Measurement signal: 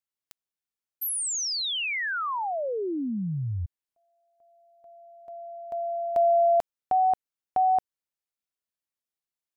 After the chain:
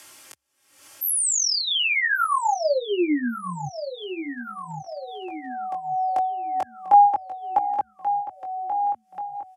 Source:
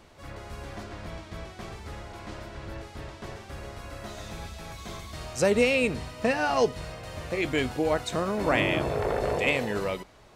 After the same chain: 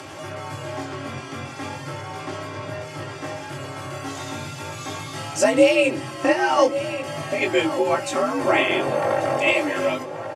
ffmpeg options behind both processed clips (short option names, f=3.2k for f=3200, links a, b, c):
-filter_complex "[0:a]lowpass=f=12k:w=0.5412,lowpass=f=12k:w=1.3066,equalizer=f=3.9k:w=6.5:g=-8.5,aecho=1:1:3.9:1,asplit=2[a][b];[b]adelay=1134,lowpass=f=4.1k:p=1,volume=-13.5dB,asplit=2[c][d];[d]adelay=1134,lowpass=f=4.1k:p=1,volume=0.48,asplit=2[e][f];[f]adelay=1134,lowpass=f=4.1k:p=1,volume=0.48,asplit=2[g][h];[h]adelay=1134,lowpass=f=4.1k:p=1,volume=0.48,asplit=2[i][j];[j]adelay=1134,lowpass=f=4.1k:p=1,volume=0.48[k];[c][e][g][i][k]amix=inputs=5:normalize=0[l];[a][l]amix=inputs=2:normalize=0,afreqshift=66,asplit=2[m][n];[n]acompressor=threshold=-36dB:ratio=6:attack=92:release=198:knee=6:detection=rms,volume=1.5dB[o];[m][o]amix=inputs=2:normalize=0,highpass=f=200:p=1,flanger=delay=19:depth=3:speed=0.39,acompressor=mode=upward:threshold=-31dB:ratio=4:attack=0.13:release=344:knee=2.83:detection=peak,volume=4.5dB" -ar 44100 -c:a libmp3lame -b:a 128k